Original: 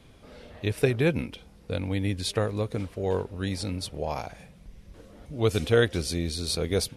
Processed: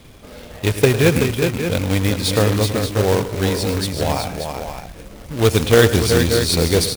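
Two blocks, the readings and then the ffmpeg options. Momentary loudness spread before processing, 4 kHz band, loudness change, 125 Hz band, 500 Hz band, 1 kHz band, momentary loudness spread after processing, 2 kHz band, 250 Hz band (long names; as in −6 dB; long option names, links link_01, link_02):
12 LU, +11.5 dB, +10.5 dB, +11.0 dB, +10.5 dB, +12.0 dB, 12 LU, +11.0 dB, +10.5 dB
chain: -af "acontrast=67,aecho=1:1:105|144|380|582|599:0.224|0.126|0.501|0.335|0.119,acrusher=bits=2:mode=log:mix=0:aa=0.000001,volume=2.5dB"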